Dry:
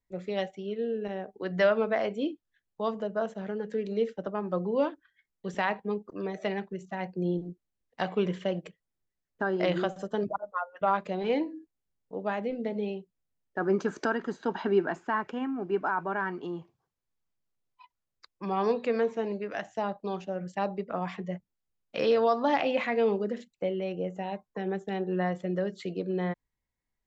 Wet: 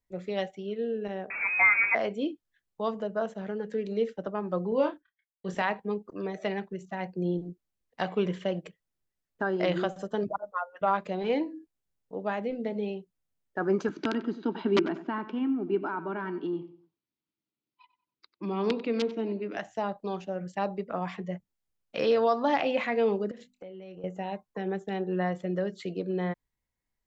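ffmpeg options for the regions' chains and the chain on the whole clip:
ffmpeg -i in.wav -filter_complex "[0:a]asettb=1/sr,asplit=3[link_01][link_02][link_03];[link_01]atrim=end=1.304[link_04];[link_02]atrim=start=1.3:end=1.95,asetpts=PTS-STARTPTS,afade=type=in:duration=0.004:curve=qsin,afade=type=out:start_time=0.646:duration=0.004:curve=qsin,aeval=exprs='val(0)+0.5*0.0335*sgn(val(0))':channel_layout=same,lowpass=frequency=2300:width_type=q:width=0.5098,lowpass=frequency=2300:width_type=q:width=0.6013,lowpass=frequency=2300:width_type=q:width=0.9,lowpass=frequency=2300:width_type=q:width=2.563,afreqshift=-2700[link_05];[link_03]atrim=start=1.946[link_06];[link_04][link_05]acrossfade=duration=0.004:curve1=hsin:curve2=qsin[link_07];[link_07][link_06]acrossfade=duration=0.004:curve1=qsin:curve2=hsin,asettb=1/sr,asplit=3[link_08][link_09][link_10];[link_08]atrim=end=4.694[link_11];[link_09]atrim=start=4.69:end=5.62,asetpts=PTS-STARTPTS,afade=type=in:duration=0.004:curve=qsin,afade=type=out:start_time=0.926:duration=0.004:curve=qsin,agate=range=-33dB:threshold=-57dB:ratio=3:release=100:detection=peak,asplit=2[link_12][link_13];[link_13]adelay=27,volume=-7dB[link_14];[link_12][link_14]amix=inputs=2:normalize=0,atrim=end_sample=41013[link_15];[link_10]atrim=start=5.616[link_16];[link_11][link_15]acrossfade=duration=0.004:curve1=hsin:curve2=qsin[link_17];[link_17][link_16]acrossfade=duration=0.004:curve1=qsin:curve2=hsin,asettb=1/sr,asplit=3[link_18][link_19][link_20];[link_18]atrim=end=13.894[link_21];[link_19]atrim=start=13.89:end=19.57,asetpts=PTS-STARTPTS,afade=type=in:duration=0.004:curve=qsin,afade=type=out:start_time=5.676:duration=0.004:curve=qsin,aeval=exprs='(mod(6.31*val(0)+1,2)-1)/6.31':channel_layout=same,highpass=140,equalizer=frequency=220:width_type=q:width=4:gain=3,equalizer=frequency=310:width_type=q:width=4:gain=10,equalizer=frequency=520:width_type=q:width=4:gain=-6,equalizer=frequency=750:width_type=q:width=4:gain=-8,equalizer=frequency=1100:width_type=q:width=4:gain=-5,equalizer=frequency=1700:width_type=q:width=4:gain=-9,lowpass=frequency=4600:width=0.5412,lowpass=frequency=4600:width=1.3066,asplit=2[link_22][link_23];[link_23]adelay=94,lowpass=frequency=2600:poles=1,volume=-13.5dB,asplit=2[link_24][link_25];[link_25]adelay=94,lowpass=frequency=2600:poles=1,volume=0.34,asplit=2[link_26][link_27];[link_27]adelay=94,lowpass=frequency=2600:poles=1,volume=0.34[link_28];[link_22][link_24][link_26][link_28]amix=inputs=4:normalize=0,atrim=end_sample=250488[link_29];[link_20]atrim=start=19.566[link_30];[link_21][link_29]acrossfade=duration=0.004:curve1=hsin:curve2=qsin[link_31];[link_31][link_30]acrossfade=duration=0.004:curve1=qsin:curve2=hsin,asettb=1/sr,asplit=3[link_32][link_33][link_34];[link_32]atrim=end=23.314[link_35];[link_33]atrim=start=23.31:end=24.04,asetpts=PTS-STARTPTS,afade=type=in:duration=0.004:curve=qsin,afade=type=out:start_time=0.726:duration=0.004:curve=qsin,bandreject=frequency=50:width_type=h:width=6,bandreject=frequency=100:width_type=h:width=6,bandreject=frequency=150:width_type=h:width=6,bandreject=frequency=200:width_type=h:width=6,bandreject=frequency=250:width_type=h:width=6,asplit=2[link_36][link_37];[link_37]adelay=27,volume=-11dB[link_38];[link_36][link_38]amix=inputs=2:normalize=0,atrim=end_sample=32193,acompressor=threshold=-42dB:ratio=5:attack=3.2:release=140:knee=1:detection=peak[link_39];[link_34]atrim=start=24.036[link_40];[link_35][link_39]acrossfade=duration=0.004:curve1=hsin:curve2=qsin[link_41];[link_41][link_40]acrossfade=duration=0.004:curve1=qsin:curve2=hsin" out.wav

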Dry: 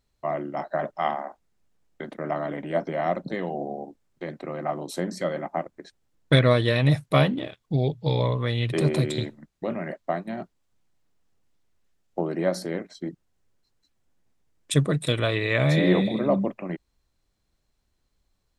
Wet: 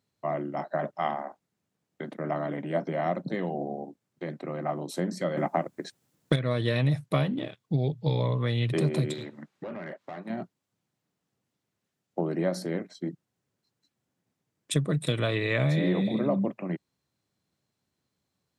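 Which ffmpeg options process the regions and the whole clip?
ffmpeg -i in.wav -filter_complex "[0:a]asettb=1/sr,asplit=3[link_01][link_02][link_03];[link_01]atrim=end=5.374[link_04];[link_02]atrim=start=5.37:end=6.36,asetpts=PTS-STARTPTS,afade=type=in:duration=0.004:curve=qsin,afade=type=out:start_time=0.986:duration=0.004:curve=qsin,highshelf=frequency=7100:gain=9.5,acontrast=87[link_05];[link_03]atrim=start=6.356[link_06];[link_04][link_05]acrossfade=duration=0.004:curve1=hsin:curve2=qsin[link_07];[link_07][link_06]acrossfade=duration=0.004:curve1=qsin:curve2=hsin,asettb=1/sr,asplit=3[link_08][link_09][link_10];[link_08]atrim=end=9.134[link_11];[link_09]atrim=start=9.13:end=10.3,asetpts=PTS-STARTPTS,afade=type=in:duration=0.004:curve=qsin,afade=type=out:start_time=1.166:duration=0.004:curve=qsin,asplit=2[link_12][link_13];[link_13]highpass=frequency=720:poles=1,volume=20dB,asoftclip=type=tanh:threshold=-12dB[link_14];[link_12][link_14]amix=inputs=2:normalize=0,lowpass=frequency=2200:poles=1,volume=-6dB,acompressor=threshold=-37dB:ratio=3:attack=3.2:release=140:knee=1:detection=peak,bandreject=frequency=680:width=15[link_15];[link_10]atrim=start=10.296[link_16];[link_11][link_15]acrossfade=duration=0.004:curve1=hsin:curve2=qsin[link_17];[link_17][link_16]acrossfade=duration=0.004:curve1=qsin:curve2=hsin,highpass=frequency=120:width=0.5412,highpass=frequency=120:width=1.3066,lowshelf=frequency=180:gain=8.5,acompressor=threshold=-18dB:ratio=12,volume=-3dB" out.wav

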